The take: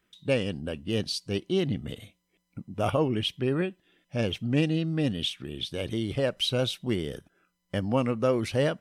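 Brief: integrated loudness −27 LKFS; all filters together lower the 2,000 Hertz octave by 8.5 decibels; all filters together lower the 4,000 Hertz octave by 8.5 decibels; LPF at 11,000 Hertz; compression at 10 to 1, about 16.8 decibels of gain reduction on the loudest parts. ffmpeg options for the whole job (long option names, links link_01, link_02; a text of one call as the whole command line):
ffmpeg -i in.wav -af "lowpass=11000,equalizer=frequency=2000:width_type=o:gain=-9,equalizer=frequency=4000:width_type=o:gain=-7.5,acompressor=threshold=-38dB:ratio=10,volume=16.5dB" out.wav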